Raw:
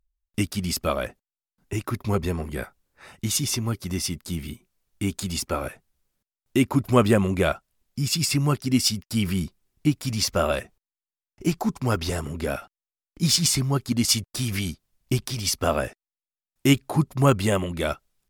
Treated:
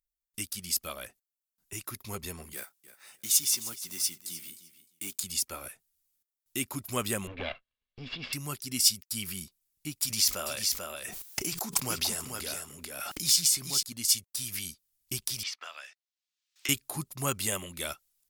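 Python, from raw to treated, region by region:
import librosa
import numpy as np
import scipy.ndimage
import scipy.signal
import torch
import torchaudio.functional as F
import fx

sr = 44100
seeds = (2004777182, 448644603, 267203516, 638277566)

y = fx.chain(x, sr, fx.block_float(bits=5),
    fx.bessel_highpass(hz=240.0, order=2),
    fx.echo_feedback(ms=306, feedback_pct=16, wet_db=-15), at=(2.53, 5.24))
y = fx.chain(y, sr, fx.lower_of_two(delay_ms=1.8),
    fx.steep_lowpass(hz=3600.0, slope=36),
    fx.peak_eq(hz=250.0, db=13.0, octaves=0.24), at=(7.27, 8.33))
y = fx.chain(y, sr, fx.low_shelf(hz=96.0, db=-10.5),
    fx.echo_single(ms=440, db=-3.5),
    fx.pre_swell(db_per_s=25.0), at=(10.02, 13.83))
y = fx.chain(y, sr, fx.highpass(hz=1300.0, slope=12),
    fx.air_absorb(metres=180.0),
    fx.band_squash(depth_pct=100), at=(15.43, 16.69))
y = librosa.effects.preemphasis(y, coef=0.9, zi=[0.0])
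y = fx.rider(y, sr, range_db=4, speed_s=2.0)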